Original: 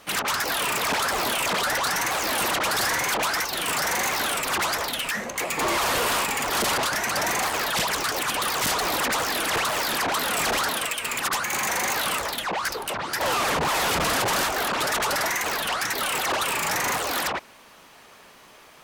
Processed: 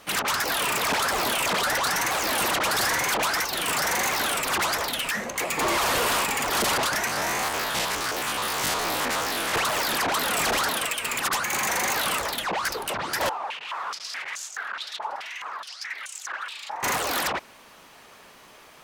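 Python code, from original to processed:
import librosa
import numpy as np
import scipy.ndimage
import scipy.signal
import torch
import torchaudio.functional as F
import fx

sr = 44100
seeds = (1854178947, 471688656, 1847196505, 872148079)

y = fx.spec_steps(x, sr, hold_ms=50, at=(7.07, 9.54))
y = fx.filter_held_bandpass(y, sr, hz=4.7, low_hz=860.0, high_hz=6800.0, at=(13.29, 16.83))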